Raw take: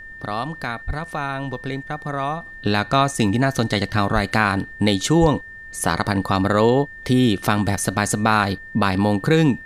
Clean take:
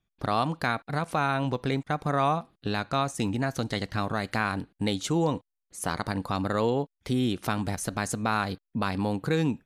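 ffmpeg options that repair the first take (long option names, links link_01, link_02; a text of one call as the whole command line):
ffmpeg -i in.wav -filter_complex "[0:a]bandreject=frequency=1800:width=30,asplit=3[link_01][link_02][link_03];[link_01]afade=type=out:start_time=0.86:duration=0.02[link_04];[link_02]highpass=frequency=140:width=0.5412,highpass=frequency=140:width=1.3066,afade=type=in:start_time=0.86:duration=0.02,afade=type=out:start_time=0.98:duration=0.02[link_05];[link_03]afade=type=in:start_time=0.98:duration=0.02[link_06];[link_04][link_05][link_06]amix=inputs=3:normalize=0,asplit=3[link_07][link_08][link_09];[link_07]afade=type=out:start_time=4.14:duration=0.02[link_10];[link_08]highpass=frequency=140:width=0.5412,highpass=frequency=140:width=1.3066,afade=type=in:start_time=4.14:duration=0.02,afade=type=out:start_time=4.26:duration=0.02[link_11];[link_09]afade=type=in:start_time=4.26:duration=0.02[link_12];[link_10][link_11][link_12]amix=inputs=3:normalize=0,asplit=3[link_13][link_14][link_15];[link_13]afade=type=out:start_time=5.2:duration=0.02[link_16];[link_14]highpass=frequency=140:width=0.5412,highpass=frequency=140:width=1.3066,afade=type=in:start_time=5.2:duration=0.02,afade=type=out:start_time=5.32:duration=0.02[link_17];[link_15]afade=type=in:start_time=5.32:duration=0.02[link_18];[link_16][link_17][link_18]amix=inputs=3:normalize=0,agate=range=-21dB:threshold=-30dB,asetnsamples=nb_out_samples=441:pad=0,asendcmd='2.46 volume volume -9.5dB',volume=0dB" out.wav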